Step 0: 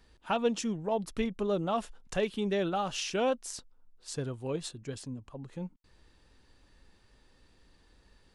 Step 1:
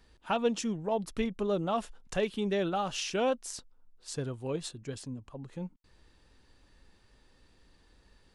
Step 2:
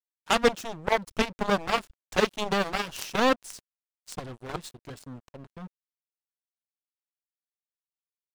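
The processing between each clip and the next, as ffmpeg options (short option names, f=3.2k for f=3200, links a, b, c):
-af anull
-af "aeval=exprs='0.15*(cos(1*acos(clip(val(0)/0.15,-1,1)))-cos(1*PI/2))+0.00668*(cos(5*acos(clip(val(0)/0.15,-1,1)))-cos(5*PI/2))+0.0473*(cos(7*acos(clip(val(0)/0.15,-1,1)))-cos(7*PI/2))':c=same,aeval=exprs='sgn(val(0))*max(abs(val(0))-0.00562,0)':c=same,volume=6.5dB"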